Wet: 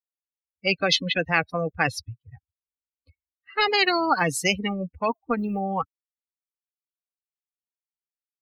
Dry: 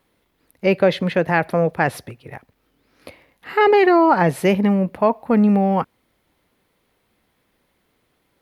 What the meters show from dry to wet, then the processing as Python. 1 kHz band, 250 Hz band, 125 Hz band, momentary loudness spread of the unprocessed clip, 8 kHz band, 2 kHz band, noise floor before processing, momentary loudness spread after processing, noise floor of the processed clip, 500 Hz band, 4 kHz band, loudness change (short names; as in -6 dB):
-6.5 dB, -11.5 dB, -9.5 dB, 9 LU, n/a, -1.0 dB, -68 dBFS, 10 LU, under -85 dBFS, -11.0 dB, +8.0 dB, -6.5 dB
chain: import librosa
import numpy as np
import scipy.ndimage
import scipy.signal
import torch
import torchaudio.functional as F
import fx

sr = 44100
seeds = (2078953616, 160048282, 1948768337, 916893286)

y = fx.bin_expand(x, sr, power=3.0)
y = scipy.signal.sosfilt(scipy.signal.butter(2, 140.0, 'highpass', fs=sr, output='sos'), y)
y = fx.env_lowpass(y, sr, base_hz=1500.0, full_db=-16.5)
y = fx.spectral_comp(y, sr, ratio=4.0)
y = y * 10.0 ** (2.0 / 20.0)